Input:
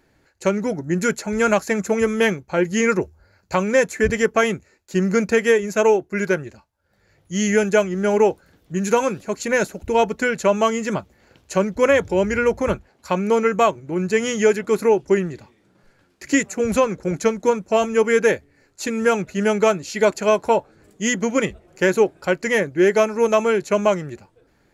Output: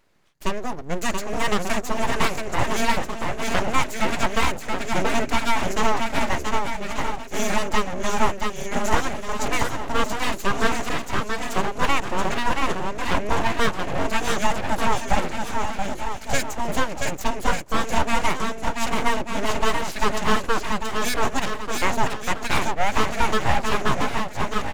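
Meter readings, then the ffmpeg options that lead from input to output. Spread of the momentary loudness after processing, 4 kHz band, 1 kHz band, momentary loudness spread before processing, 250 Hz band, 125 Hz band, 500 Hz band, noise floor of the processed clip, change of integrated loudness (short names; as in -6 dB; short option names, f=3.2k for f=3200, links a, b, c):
5 LU, +4.0 dB, +2.0 dB, 8 LU, -6.0 dB, -2.0 dB, -10.0 dB, -33 dBFS, -5.0 dB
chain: -af "aecho=1:1:680|1190|1572|1859|2075:0.631|0.398|0.251|0.158|0.1,aeval=exprs='abs(val(0))':c=same,volume=-2dB"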